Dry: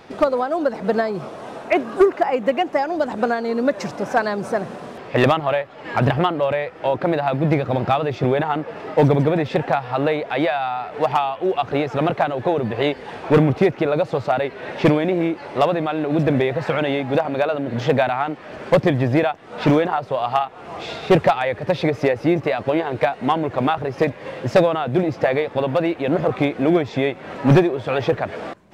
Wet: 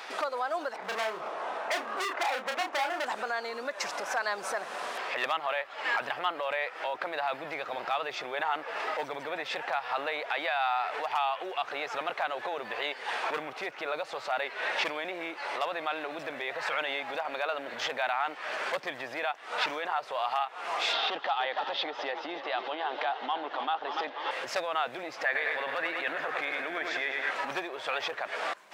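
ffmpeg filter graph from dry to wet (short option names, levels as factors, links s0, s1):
-filter_complex "[0:a]asettb=1/sr,asplit=3[s0][s1][s2];[s0]atrim=end=0.764[s3];[s1]atrim=start=0.76:end=3.05,asetpts=PTS-STARTPTS,afade=t=in:d=0.004:c=qsin,afade=t=out:st=2.286:d=0.004:c=qsin,lowpass=f=1200:p=1,asoftclip=type=hard:threshold=0.0531,asplit=2[s4][s5];[s5]adelay=32,volume=0.596[s6];[s4][s6]amix=inputs=2:normalize=0,atrim=end_sample=100989[s7];[s2]atrim=start=3.046[s8];[s3][s7]acrossfade=d=0.004:c1=hsin:c2=qsin[s9];[s9][s8]acrossfade=d=0.004:c1=qsin:c2=hsin,asettb=1/sr,asplit=3[s10][s11][s12];[s10]atrim=end=20.934[s13];[s11]atrim=start=20.93:end=24.31,asetpts=PTS-STARTPTS,afade=t=in:d=0.004:c=qsin,afade=t=out:st=3.376:d=0.004:c=qsin,highpass=f=180:w=0.5412,highpass=f=180:w=1.3066,equalizer=f=290:t=q:w=4:g=7,equalizer=f=800:t=q:w=4:g=7,equalizer=f=1200:t=q:w=4:g=3,equalizer=f=2300:t=q:w=4:g=-7,equalizer=f=3200:t=q:w=4:g=9,lowpass=f=5100:w=0.5412,lowpass=f=5100:w=1.3066,asplit=7[s14][s15][s16][s17][s18][s19][s20];[s15]adelay=292,afreqshift=36,volume=0.178[s21];[s16]adelay=584,afreqshift=72,volume=0.105[s22];[s17]adelay=876,afreqshift=108,volume=0.0617[s23];[s18]adelay=1168,afreqshift=144,volume=0.0367[s24];[s19]adelay=1460,afreqshift=180,volume=0.0216[s25];[s20]adelay=1752,afreqshift=216,volume=0.0127[s26];[s14][s21][s22][s23][s24][s25][s26]amix=inputs=7:normalize=0,atrim=end_sample=149058[s27];[s12]atrim=start=24.306[s28];[s13][s27]acrossfade=d=0.004:c1=hsin:c2=qsin[s29];[s29][s28]acrossfade=d=0.004:c1=qsin:c2=hsin,asettb=1/sr,asplit=3[s30][s31][s32];[s30]atrim=end=25.254[s33];[s31]atrim=start=25.25:end=27.31,asetpts=PTS-STARTPTS,afade=t=in:d=0.004:c=qsin,afade=t=out:st=2.056:d=0.004:c=qsin,equalizer=f=1700:t=o:w=0.51:g=11.5,aecho=1:1:102|204|306|408|510|612|714:0.398|0.223|0.125|0.0699|0.0392|0.0219|0.0123,atrim=end_sample=90846[s34];[s32]atrim=start=27.306[s35];[s33][s34]acrossfade=d=0.004:c1=hsin:c2=qsin[s36];[s36][s35]acrossfade=d=0.004:c1=qsin:c2=hsin,acompressor=threshold=0.0282:ratio=2.5,alimiter=limit=0.0668:level=0:latency=1:release=11,highpass=1000,volume=2.37"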